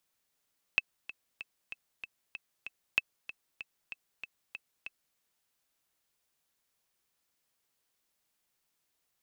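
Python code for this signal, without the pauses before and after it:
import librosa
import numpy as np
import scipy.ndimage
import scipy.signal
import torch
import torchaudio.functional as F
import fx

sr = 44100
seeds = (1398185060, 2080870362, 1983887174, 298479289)

y = fx.click_track(sr, bpm=191, beats=7, bars=2, hz=2620.0, accent_db=16.0, level_db=-11.5)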